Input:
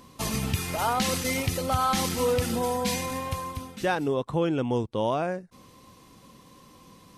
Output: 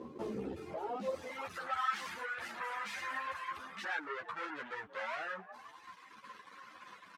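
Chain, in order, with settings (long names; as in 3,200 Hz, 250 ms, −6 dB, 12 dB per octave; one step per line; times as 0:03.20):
leveller curve on the samples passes 2
in parallel at +0.5 dB: downward compressor, threshold −33 dBFS, peak gain reduction 14 dB
on the sum: echo with shifted repeats 185 ms, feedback 51%, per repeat +61 Hz, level −19 dB
gain into a clipping stage and back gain 29.5 dB
reverb reduction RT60 1.8 s
band-pass filter sweep 390 Hz → 1,600 Hz, 0:00.86–0:01.63
string-ensemble chorus
level +6 dB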